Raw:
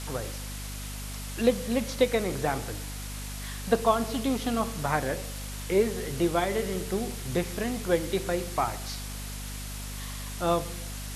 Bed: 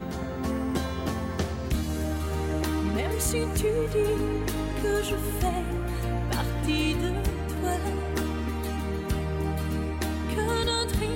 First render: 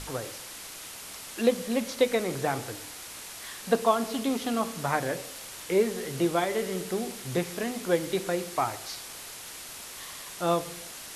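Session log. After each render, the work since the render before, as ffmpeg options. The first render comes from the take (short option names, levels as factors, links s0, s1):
-af "bandreject=f=50:t=h:w=6,bandreject=f=100:t=h:w=6,bandreject=f=150:t=h:w=6,bandreject=f=200:t=h:w=6,bandreject=f=250:t=h:w=6"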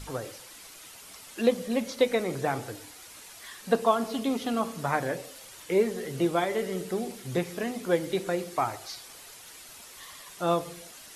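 -af "afftdn=nr=8:nf=-43"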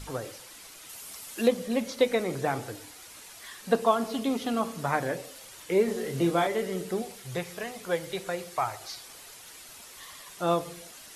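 -filter_complex "[0:a]asettb=1/sr,asplit=3[s0][s1][s2];[s0]atrim=end=0.894[s3];[s1]atrim=start=0.89:end=1.48,asetpts=PTS-STARTPTS,afade=t=in:d=0.004:c=qsin,afade=t=out:st=0.586:d=0.004:c=qsin,highshelf=f=7400:g=9[s4];[s2]atrim=start=1.476[s5];[s3][s4]acrossfade=d=0.004:c1=hsin:c2=qsin[s6];[s6][s5]acrossfade=d=0.004:c1=qsin:c2=hsin,asettb=1/sr,asplit=3[s7][s8][s9];[s7]atrim=end=5.854[s10];[s8]atrim=start=5.85:end=6.47,asetpts=PTS-STARTPTS,afade=t=in:d=0.004:c=qsin,afade=t=out:st=0.616:d=0.004:c=qsin,asplit=2[s11][s12];[s12]adelay=30,volume=0.668[s13];[s11][s13]amix=inputs=2:normalize=0,atrim=end_sample=27342[s14];[s9]atrim=start=6.466[s15];[s10][s14]acrossfade=d=0.004:c1=hsin:c2=qsin[s16];[s16][s15]acrossfade=d=0.004:c1=qsin:c2=hsin,asettb=1/sr,asplit=3[s17][s18][s19];[s17]atrim=end=7.024[s20];[s18]atrim=start=7.02:end=8.81,asetpts=PTS-STARTPTS,afade=t=in:d=0.004:c=qsin,afade=t=out:st=1.786:d=0.004:c=qsin,equalizer=f=270:w=1.5:g=-14[s21];[s19]atrim=start=8.806[s22];[s20][s21]acrossfade=d=0.004:c1=hsin:c2=qsin[s23];[s23][s22]acrossfade=d=0.004:c1=qsin:c2=hsin"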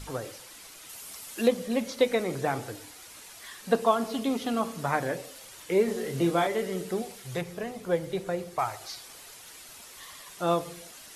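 -filter_complex "[0:a]asettb=1/sr,asplit=3[s0][s1][s2];[s0]atrim=end=7.414[s3];[s1]atrim=start=7.41:end=8.59,asetpts=PTS-STARTPTS,afade=t=in:d=0.004:c=qsin,afade=t=out:st=1.176:d=0.004:c=qsin,tiltshelf=f=750:g=6[s4];[s2]atrim=start=8.586[s5];[s3][s4]acrossfade=d=0.004:c1=hsin:c2=qsin[s6];[s6][s5]acrossfade=d=0.004:c1=qsin:c2=hsin"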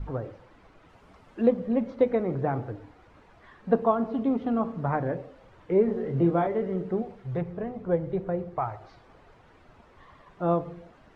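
-af "lowpass=1200,lowshelf=f=180:g=10"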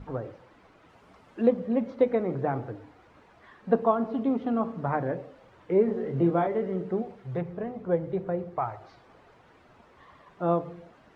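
-af "highpass=f=110:p=1,bandreject=f=50:t=h:w=6,bandreject=f=100:t=h:w=6,bandreject=f=150:t=h:w=6"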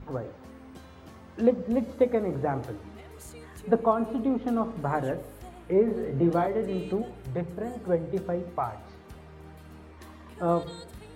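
-filter_complex "[1:a]volume=0.112[s0];[0:a][s0]amix=inputs=2:normalize=0"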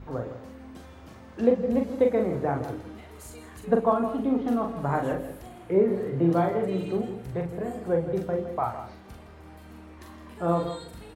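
-filter_complex "[0:a]asplit=2[s0][s1];[s1]adelay=42,volume=0.596[s2];[s0][s2]amix=inputs=2:normalize=0,asplit=2[s3][s4];[s4]adelay=163.3,volume=0.282,highshelf=f=4000:g=-3.67[s5];[s3][s5]amix=inputs=2:normalize=0"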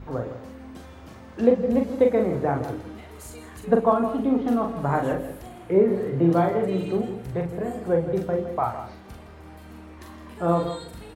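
-af "volume=1.41"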